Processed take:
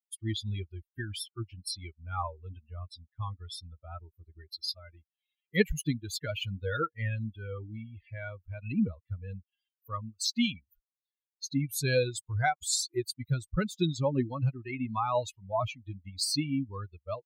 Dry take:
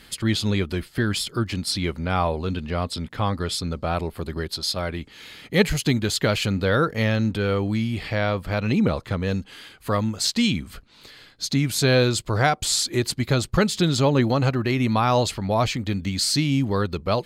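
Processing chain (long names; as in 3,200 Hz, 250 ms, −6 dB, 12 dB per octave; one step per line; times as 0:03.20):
spectral dynamics exaggerated over time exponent 3
high-shelf EQ 8,700 Hz +4 dB
level −2.5 dB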